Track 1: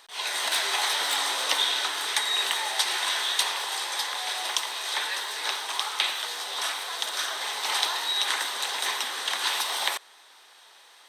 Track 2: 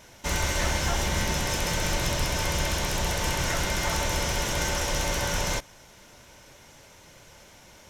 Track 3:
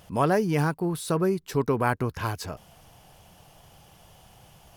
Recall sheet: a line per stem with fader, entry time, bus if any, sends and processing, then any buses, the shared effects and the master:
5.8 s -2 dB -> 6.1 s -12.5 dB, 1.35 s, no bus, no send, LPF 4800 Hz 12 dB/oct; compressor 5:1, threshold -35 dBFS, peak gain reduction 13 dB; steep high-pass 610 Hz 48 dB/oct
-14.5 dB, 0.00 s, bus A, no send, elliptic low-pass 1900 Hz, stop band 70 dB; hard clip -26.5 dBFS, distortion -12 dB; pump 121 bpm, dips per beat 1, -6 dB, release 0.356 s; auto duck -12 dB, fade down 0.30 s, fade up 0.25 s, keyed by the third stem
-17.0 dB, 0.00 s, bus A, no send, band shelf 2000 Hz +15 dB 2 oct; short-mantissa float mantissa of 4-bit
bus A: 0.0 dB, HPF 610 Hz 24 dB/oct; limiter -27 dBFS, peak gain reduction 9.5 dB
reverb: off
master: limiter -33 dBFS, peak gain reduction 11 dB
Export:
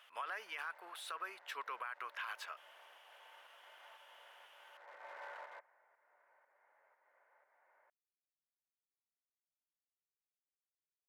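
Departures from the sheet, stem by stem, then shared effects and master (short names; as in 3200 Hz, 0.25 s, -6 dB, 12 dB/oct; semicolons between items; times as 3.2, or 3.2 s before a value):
stem 1: muted; stem 3: missing short-mantissa float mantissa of 4-bit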